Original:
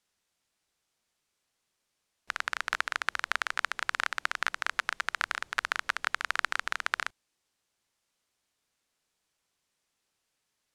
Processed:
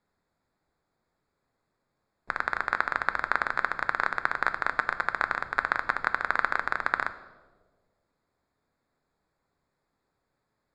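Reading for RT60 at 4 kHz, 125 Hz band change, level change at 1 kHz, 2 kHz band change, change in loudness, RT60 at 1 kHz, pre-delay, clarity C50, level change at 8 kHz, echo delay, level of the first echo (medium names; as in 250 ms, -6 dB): 1.0 s, no reading, +6.0 dB, +3.0 dB, +3.5 dB, 1.3 s, 7 ms, 14.0 dB, under -10 dB, no echo, no echo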